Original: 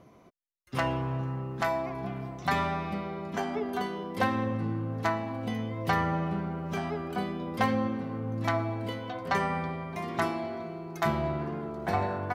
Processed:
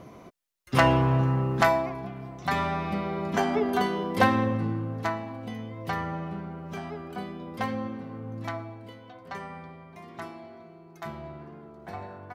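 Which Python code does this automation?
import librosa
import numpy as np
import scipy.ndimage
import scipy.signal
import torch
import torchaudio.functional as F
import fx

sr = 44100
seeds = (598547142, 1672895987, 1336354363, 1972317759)

y = fx.gain(x, sr, db=fx.line((1.6, 9.0), (2.12, -3.0), (3.25, 6.5), (4.21, 6.5), (5.46, -4.0), (8.38, -4.0), (8.83, -10.5)))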